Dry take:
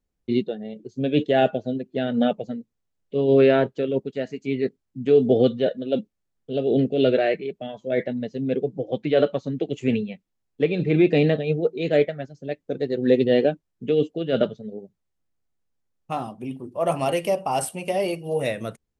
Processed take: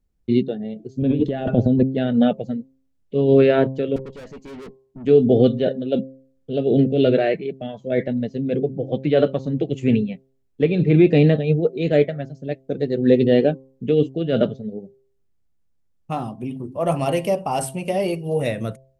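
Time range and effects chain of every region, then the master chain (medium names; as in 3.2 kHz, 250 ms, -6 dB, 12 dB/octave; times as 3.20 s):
1.02–1.83 s: bass shelf 480 Hz +11 dB + compressor with a negative ratio -22 dBFS
3.96–5.05 s: peaking EQ 480 Hz +8 dB 0.42 oct + valve stage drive 38 dB, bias 0.3
whole clip: bass shelf 240 Hz +10.5 dB; de-hum 132.7 Hz, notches 8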